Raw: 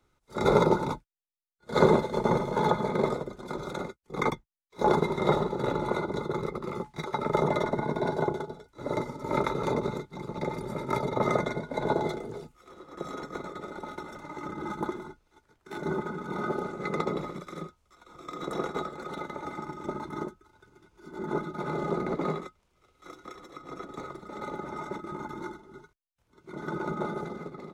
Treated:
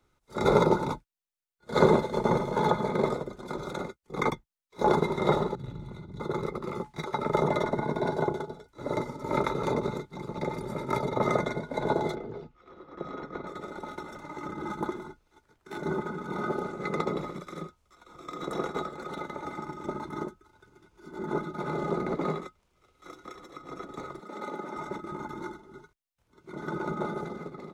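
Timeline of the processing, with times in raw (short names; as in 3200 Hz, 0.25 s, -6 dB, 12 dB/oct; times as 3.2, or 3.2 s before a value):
5.55–6.2 EQ curve 120 Hz 0 dB, 510 Hz -23 dB, 1400 Hz -21 dB, 3300 Hz -12 dB, 4800 Hz -15 dB
12.15–13.47 air absorption 220 m
24.2–24.77 HPF 180 Hz 24 dB/oct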